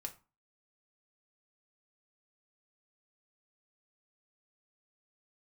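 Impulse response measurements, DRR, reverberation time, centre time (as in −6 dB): 3.0 dB, 0.30 s, 8 ms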